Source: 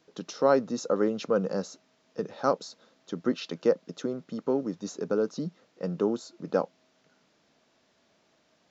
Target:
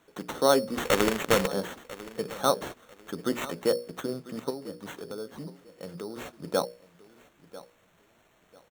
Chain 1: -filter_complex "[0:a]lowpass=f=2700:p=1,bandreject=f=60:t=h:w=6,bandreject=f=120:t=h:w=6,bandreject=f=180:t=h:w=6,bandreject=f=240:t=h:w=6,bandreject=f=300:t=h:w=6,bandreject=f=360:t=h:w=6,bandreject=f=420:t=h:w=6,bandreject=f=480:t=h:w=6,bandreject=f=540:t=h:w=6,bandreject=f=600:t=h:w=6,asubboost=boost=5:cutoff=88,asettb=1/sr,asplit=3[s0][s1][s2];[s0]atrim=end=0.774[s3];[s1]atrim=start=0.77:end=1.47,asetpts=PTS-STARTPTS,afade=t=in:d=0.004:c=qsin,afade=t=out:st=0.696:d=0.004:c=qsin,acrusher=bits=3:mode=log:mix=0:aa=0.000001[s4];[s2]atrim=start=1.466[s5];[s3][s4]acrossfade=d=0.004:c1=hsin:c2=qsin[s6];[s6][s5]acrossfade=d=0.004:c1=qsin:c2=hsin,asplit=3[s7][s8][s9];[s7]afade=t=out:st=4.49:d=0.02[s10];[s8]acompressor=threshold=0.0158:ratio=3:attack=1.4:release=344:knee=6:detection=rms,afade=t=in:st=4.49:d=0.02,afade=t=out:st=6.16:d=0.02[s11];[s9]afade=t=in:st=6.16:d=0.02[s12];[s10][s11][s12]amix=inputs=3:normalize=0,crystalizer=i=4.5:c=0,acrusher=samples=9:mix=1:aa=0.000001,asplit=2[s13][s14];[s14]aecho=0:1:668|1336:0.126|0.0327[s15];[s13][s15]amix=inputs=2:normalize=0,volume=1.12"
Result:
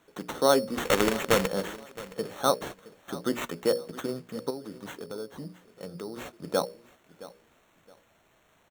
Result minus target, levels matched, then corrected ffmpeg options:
echo 327 ms early
-filter_complex "[0:a]lowpass=f=2700:p=1,bandreject=f=60:t=h:w=6,bandreject=f=120:t=h:w=6,bandreject=f=180:t=h:w=6,bandreject=f=240:t=h:w=6,bandreject=f=300:t=h:w=6,bandreject=f=360:t=h:w=6,bandreject=f=420:t=h:w=6,bandreject=f=480:t=h:w=6,bandreject=f=540:t=h:w=6,bandreject=f=600:t=h:w=6,asubboost=boost=5:cutoff=88,asettb=1/sr,asplit=3[s0][s1][s2];[s0]atrim=end=0.774[s3];[s1]atrim=start=0.77:end=1.47,asetpts=PTS-STARTPTS,afade=t=in:d=0.004:c=qsin,afade=t=out:st=0.696:d=0.004:c=qsin,acrusher=bits=3:mode=log:mix=0:aa=0.000001[s4];[s2]atrim=start=1.466[s5];[s3][s4]acrossfade=d=0.004:c1=hsin:c2=qsin[s6];[s6][s5]acrossfade=d=0.004:c1=qsin:c2=hsin,asplit=3[s7][s8][s9];[s7]afade=t=out:st=4.49:d=0.02[s10];[s8]acompressor=threshold=0.0158:ratio=3:attack=1.4:release=344:knee=6:detection=rms,afade=t=in:st=4.49:d=0.02,afade=t=out:st=6.16:d=0.02[s11];[s9]afade=t=in:st=6.16:d=0.02[s12];[s10][s11][s12]amix=inputs=3:normalize=0,crystalizer=i=4.5:c=0,acrusher=samples=9:mix=1:aa=0.000001,asplit=2[s13][s14];[s14]aecho=0:1:995|1990:0.126|0.0327[s15];[s13][s15]amix=inputs=2:normalize=0,volume=1.12"

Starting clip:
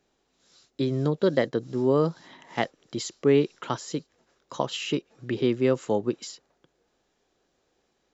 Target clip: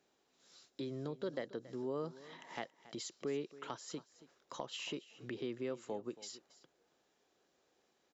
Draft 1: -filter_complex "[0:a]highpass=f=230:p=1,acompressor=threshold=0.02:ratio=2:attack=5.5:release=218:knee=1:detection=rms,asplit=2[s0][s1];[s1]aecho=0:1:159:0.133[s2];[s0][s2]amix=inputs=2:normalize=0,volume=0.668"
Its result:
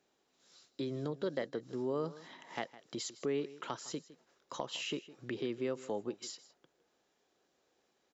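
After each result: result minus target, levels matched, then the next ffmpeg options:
echo 118 ms early; compression: peak gain reduction -4 dB
-filter_complex "[0:a]highpass=f=230:p=1,acompressor=threshold=0.02:ratio=2:attack=5.5:release=218:knee=1:detection=rms,asplit=2[s0][s1];[s1]aecho=0:1:277:0.133[s2];[s0][s2]amix=inputs=2:normalize=0,volume=0.668"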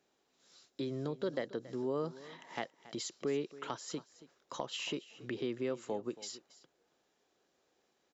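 compression: peak gain reduction -4 dB
-filter_complex "[0:a]highpass=f=230:p=1,acompressor=threshold=0.00794:ratio=2:attack=5.5:release=218:knee=1:detection=rms,asplit=2[s0][s1];[s1]aecho=0:1:277:0.133[s2];[s0][s2]amix=inputs=2:normalize=0,volume=0.668"

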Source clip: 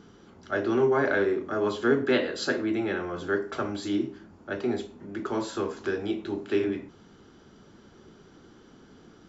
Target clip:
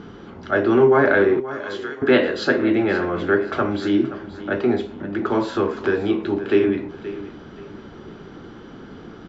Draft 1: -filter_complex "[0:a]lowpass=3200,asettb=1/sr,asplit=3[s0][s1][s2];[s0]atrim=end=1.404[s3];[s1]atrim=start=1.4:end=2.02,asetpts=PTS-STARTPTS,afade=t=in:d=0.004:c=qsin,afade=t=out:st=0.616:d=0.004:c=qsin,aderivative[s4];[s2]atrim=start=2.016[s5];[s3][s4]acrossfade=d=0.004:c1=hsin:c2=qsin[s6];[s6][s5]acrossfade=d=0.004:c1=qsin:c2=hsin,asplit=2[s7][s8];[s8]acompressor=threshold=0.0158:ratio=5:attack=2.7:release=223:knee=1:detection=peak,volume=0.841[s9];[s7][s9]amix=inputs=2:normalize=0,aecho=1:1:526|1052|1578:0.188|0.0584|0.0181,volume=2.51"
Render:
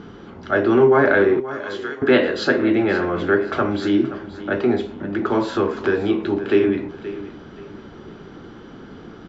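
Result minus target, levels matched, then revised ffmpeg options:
compression: peak gain reduction -6.5 dB
-filter_complex "[0:a]lowpass=3200,asettb=1/sr,asplit=3[s0][s1][s2];[s0]atrim=end=1.404[s3];[s1]atrim=start=1.4:end=2.02,asetpts=PTS-STARTPTS,afade=t=in:d=0.004:c=qsin,afade=t=out:st=0.616:d=0.004:c=qsin,aderivative[s4];[s2]atrim=start=2.016[s5];[s3][s4]acrossfade=d=0.004:c1=hsin:c2=qsin[s6];[s6][s5]acrossfade=d=0.004:c1=qsin:c2=hsin,asplit=2[s7][s8];[s8]acompressor=threshold=0.00631:ratio=5:attack=2.7:release=223:knee=1:detection=peak,volume=0.841[s9];[s7][s9]amix=inputs=2:normalize=0,aecho=1:1:526|1052|1578:0.188|0.0584|0.0181,volume=2.51"

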